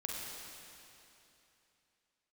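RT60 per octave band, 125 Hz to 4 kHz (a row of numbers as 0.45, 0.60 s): 3.1, 3.0, 3.0, 3.0, 3.0, 2.9 s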